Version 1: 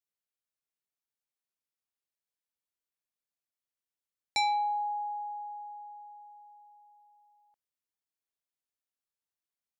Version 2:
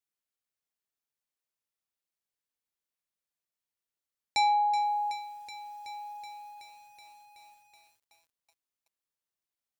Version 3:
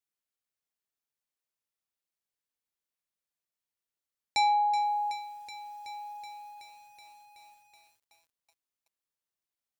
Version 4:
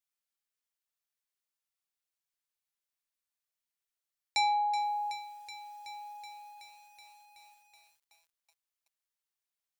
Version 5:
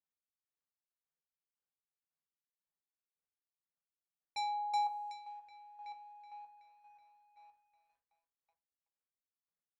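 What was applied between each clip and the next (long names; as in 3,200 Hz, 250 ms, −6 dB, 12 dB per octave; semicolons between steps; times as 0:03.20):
dynamic equaliser 790 Hz, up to +4 dB, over −39 dBFS, Q 2.4; feedback echo at a low word length 375 ms, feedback 80%, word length 9 bits, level −11.5 dB
no processing that can be heard
parametric band 190 Hz −14.5 dB 2.7 octaves
low-pass that shuts in the quiet parts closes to 1,400 Hz, open at −30 dBFS; square-wave tremolo 1.9 Hz, depth 60%, duty 25%; on a send at −3.5 dB: convolution reverb RT60 0.35 s, pre-delay 3 ms; on the sum: level −3.5 dB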